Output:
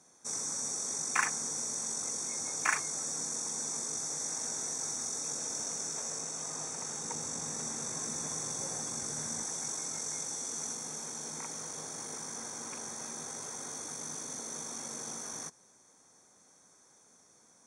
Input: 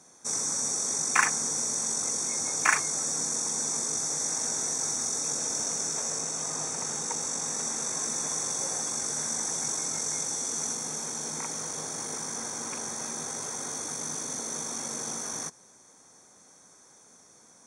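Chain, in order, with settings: 7.04–9.43 low shelf 200 Hz +11 dB; gain -6.5 dB

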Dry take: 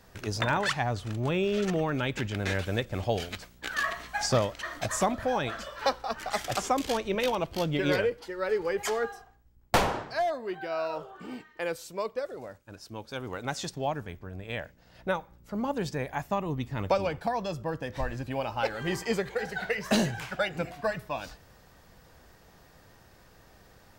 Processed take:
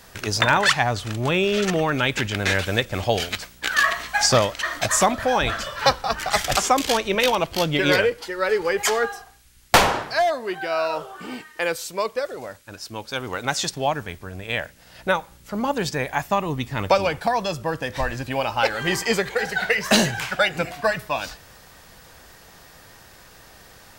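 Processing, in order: 5.4–6.57 octaver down 2 oct, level +2 dB; tilt shelf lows -4 dB, about 820 Hz; band noise 1300–13000 Hz -67 dBFS; gain +8.5 dB

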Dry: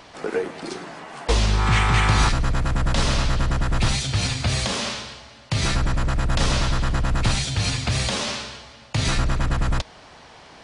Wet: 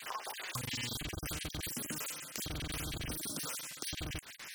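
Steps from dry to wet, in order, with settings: random spectral dropouts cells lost 39%; gate with hold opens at -39 dBFS; low shelf 460 Hz -9 dB; compressor 4:1, threshold -41 dBFS, peak gain reduction 17.5 dB; speed mistake 33 rpm record played at 78 rpm; gain +1.5 dB

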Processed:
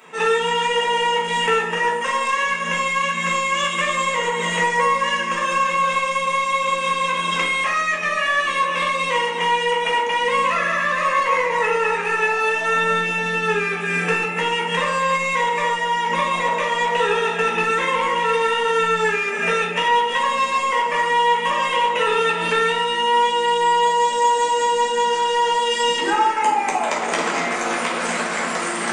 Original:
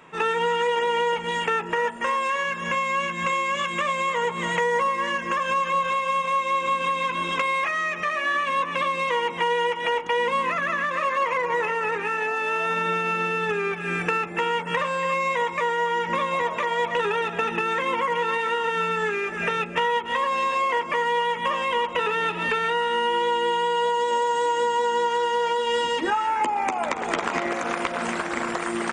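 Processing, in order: HPF 220 Hz 12 dB/oct; high shelf 4000 Hz +10.5 dB; in parallel at -12 dB: soft clip -22 dBFS, distortion -12 dB; on the sum: shoebox room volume 160 m³, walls mixed, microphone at 1.5 m; gain -3 dB

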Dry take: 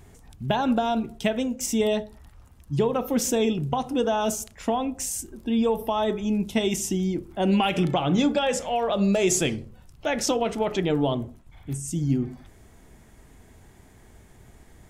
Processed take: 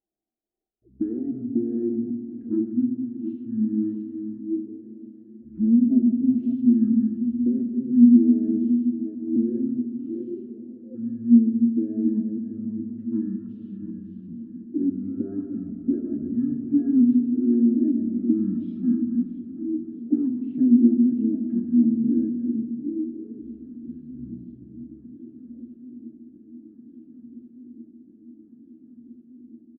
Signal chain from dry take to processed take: regenerating reverse delay 0.183 s, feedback 47%, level -8 dB; gate -40 dBFS, range -14 dB; low-pass opened by the level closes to 740 Hz, open at -20.5 dBFS; low shelf 250 Hz +6.5 dB; comb 1.5 ms, depth 51%; auto-wah 480–1600 Hz, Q 19, down, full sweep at -24 dBFS; graphic EQ 125/250/500/1000/2000/4000/8000 Hz -4/-3/+12/+7/-10/+3/-7 dB; swung echo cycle 0.869 s, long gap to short 3:1, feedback 74%, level -22.5 dB; reverb RT60 1.3 s, pre-delay 3 ms, DRR 5 dB; speed mistake 15 ips tape played at 7.5 ips; gain +4 dB

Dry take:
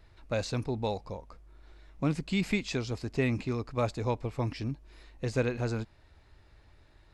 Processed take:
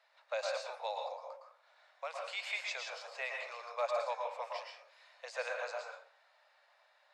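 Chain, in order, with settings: steep high-pass 540 Hz 72 dB/oct; air absorption 51 m; plate-style reverb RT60 0.53 s, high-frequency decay 0.6×, pre-delay 0.1 s, DRR 0.5 dB; gain -3 dB

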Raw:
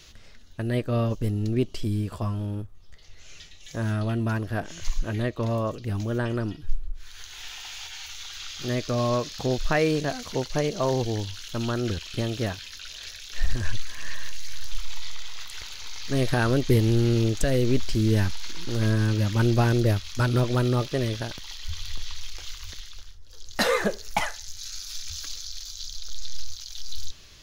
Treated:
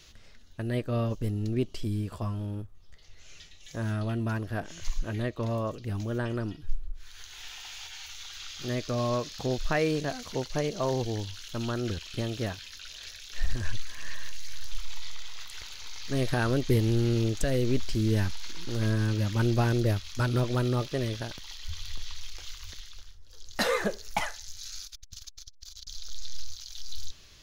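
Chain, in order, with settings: 24.85–25.87 core saturation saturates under 220 Hz; gain -4 dB

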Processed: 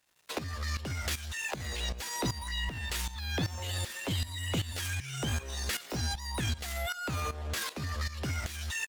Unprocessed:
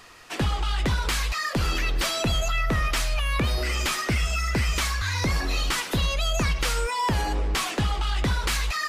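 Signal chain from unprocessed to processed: in parallel at +2.5 dB: limiter -25 dBFS, peak gain reduction 7.5 dB; on the sum: HPF 42 Hz 12 dB/oct; pitch shift +6.5 st; crossover distortion -39 dBFS; tremolo saw up 2.6 Hz, depth 80%; gain -8.5 dB

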